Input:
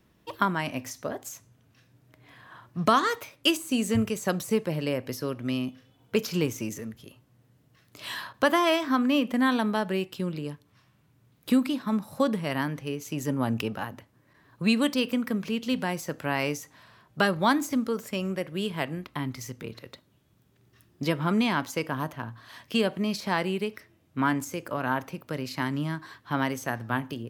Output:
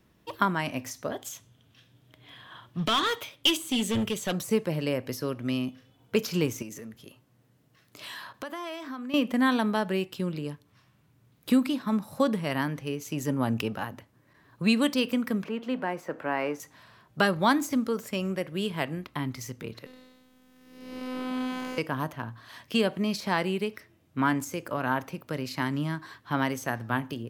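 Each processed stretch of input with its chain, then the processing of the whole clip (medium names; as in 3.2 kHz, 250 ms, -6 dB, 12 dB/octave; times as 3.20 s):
1.12–4.33 s: hard clipper -23.5 dBFS + peaking EQ 3.3 kHz +13 dB 0.38 oct
6.62–9.14 s: peaking EQ 61 Hz -7 dB 2 oct + compression 3:1, threshold -38 dBFS
15.44–16.60 s: companding laws mixed up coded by mu + three-band isolator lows -16 dB, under 240 Hz, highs -18 dB, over 2.2 kHz
19.86–21.78 s: spectral blur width 349 ms + robot voice 255 Hz + three bands compressed up and down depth 40%
whole clip: none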